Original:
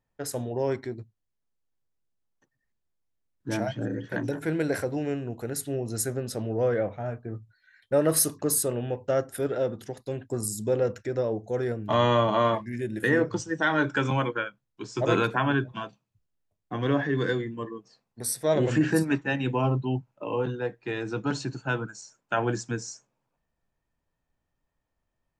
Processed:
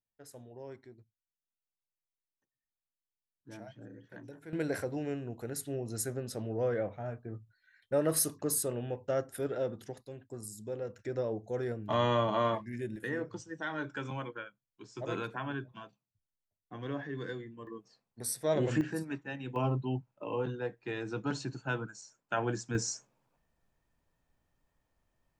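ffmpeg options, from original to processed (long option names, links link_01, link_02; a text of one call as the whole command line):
ffmpeg -i in.wav -af "asetnsamples=nb_out_samples=441:pad=0,asendcmd='4.53 volume volume -6.5dB;10.07 volume volume -13.5dB;10.99 volume volume -6.5dB;12.96 volume volume -13dB;17.67 volume volume -6dB;18.81 volume volume -13dB;19.56 volume volume -6dB;22.75 volume volume 3dB',volume=-19dB" out.wav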